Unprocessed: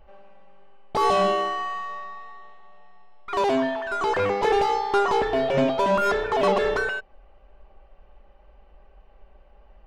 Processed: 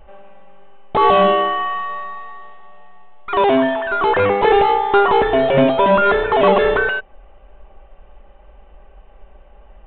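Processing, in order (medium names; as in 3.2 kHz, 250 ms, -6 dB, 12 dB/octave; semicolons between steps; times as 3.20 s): resampled via 8 kHz; trim +8 dB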